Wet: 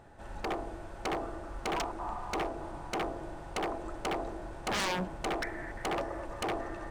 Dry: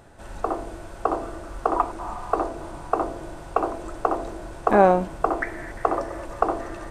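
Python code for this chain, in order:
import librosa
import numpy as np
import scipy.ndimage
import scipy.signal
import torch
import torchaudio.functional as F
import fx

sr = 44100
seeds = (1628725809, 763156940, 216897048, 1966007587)

y = fx.high_shelf(x, sr, hz=4900.0, db=-8.0)
y = fx.small_body(y, sr, hz=(830.0, 1800.0), ring_ms=45, db=6)
y = 10.0 ** (-21.0 / 20.0) * (np.abs((y / 10.0 ** (-21.0 / 20.0) + 3.0) % 4.0 - 2.0) - 1.0)
y = y * 10.0 ** (-5.5 / 20.0)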